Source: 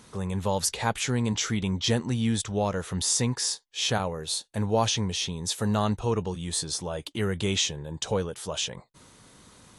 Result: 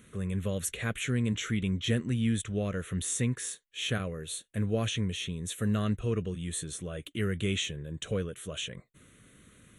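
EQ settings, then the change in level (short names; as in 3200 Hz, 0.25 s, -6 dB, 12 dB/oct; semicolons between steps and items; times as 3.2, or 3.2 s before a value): fixed phaser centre 2100 Hz, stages 4; -1.5 dB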